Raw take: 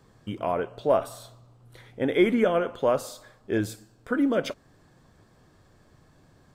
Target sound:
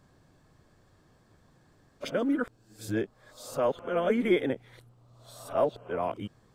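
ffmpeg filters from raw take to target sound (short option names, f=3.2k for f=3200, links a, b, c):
-af "areverse,volume=-4dB"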